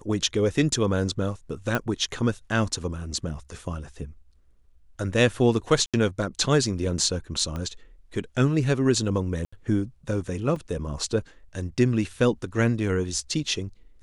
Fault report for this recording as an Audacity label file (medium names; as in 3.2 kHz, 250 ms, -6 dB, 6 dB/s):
1.750000	1.750000	pop -11 dBFS
5.860000	5.940000	dropout 76 ms
7.560000	7.560000	pop -20 dBFS
9.450000	9.530000	dropout 75 ms
10.560000	10.560000	dropout 3.4 ms